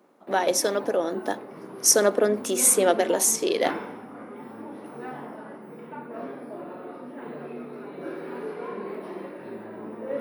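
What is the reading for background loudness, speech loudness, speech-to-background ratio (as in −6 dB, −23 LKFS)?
−37.5 LKFS, −22.0 LKFS, 15.5 dB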